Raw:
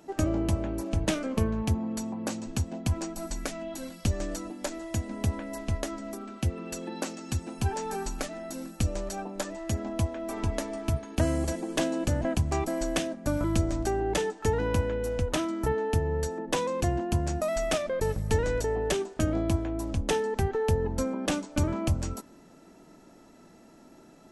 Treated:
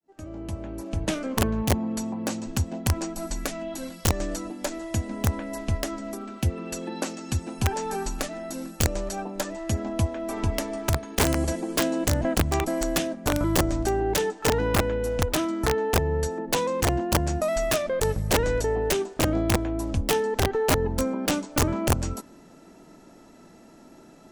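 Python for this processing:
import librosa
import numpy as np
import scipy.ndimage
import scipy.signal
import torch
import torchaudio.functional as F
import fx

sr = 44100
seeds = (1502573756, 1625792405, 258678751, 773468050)

y = fx.fade_in_head(x, sr, length_s=1.59)
y = (np.mod(10.0 ** (17.5 / 20.0) * y + 1.0, 2.0) - 1.0) / 10.0 ** (17.5 / 20.0)
y = y * 10.0 ** (3.5 / 20.0)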